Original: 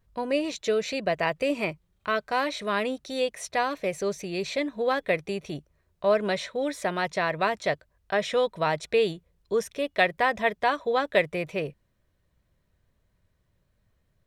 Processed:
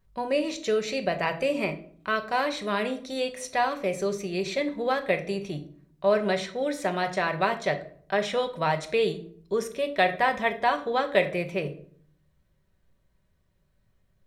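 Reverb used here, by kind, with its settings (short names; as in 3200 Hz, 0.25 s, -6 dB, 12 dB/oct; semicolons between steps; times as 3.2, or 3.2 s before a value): shoebox room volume 710 m³, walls furnished, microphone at 1.1 m; gain -1 dB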